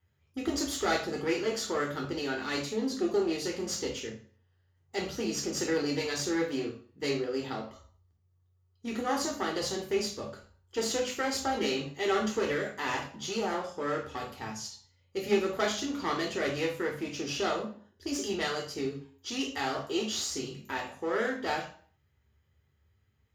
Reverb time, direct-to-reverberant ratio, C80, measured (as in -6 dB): 0.50 s, -1.5 dB, 12.0 dB